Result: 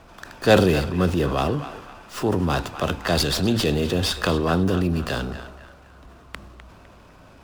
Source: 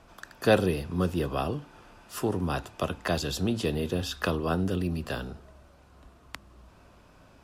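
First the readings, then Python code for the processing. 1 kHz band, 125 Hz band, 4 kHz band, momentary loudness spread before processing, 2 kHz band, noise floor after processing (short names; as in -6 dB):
+7.0 dB, +7.5 dB, +10.0 dB, 20 LU, +7.0 dB, -49 dBFS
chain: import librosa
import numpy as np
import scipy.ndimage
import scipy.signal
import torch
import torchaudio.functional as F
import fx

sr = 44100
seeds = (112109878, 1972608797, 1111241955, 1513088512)

y = fx.transient(x, sr, attack_db=-3, sustain_db=5)
y = fx.dynamic_eq(y, sr, hz=4500.0, q=2.0, threshold_db=-47.0, ratio=4.0, max_db=5)
y = fx.echo_banded(y, sr, ms=253, feedback_pct=45, hz=1500.0, wet_db=-10.0)
y = fx.running_max(y, sr, window=3)
y = y * 10.0 ** (7.0 / 20.0)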